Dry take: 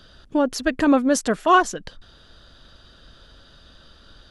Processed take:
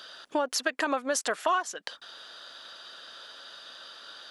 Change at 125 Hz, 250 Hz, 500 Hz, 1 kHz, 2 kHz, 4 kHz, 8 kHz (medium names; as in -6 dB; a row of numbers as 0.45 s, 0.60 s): under -20 dB, -17.0 dB, -8.5 dB, -9.0 dB, -5.5 dB, -1.5 dB, -2.5 dB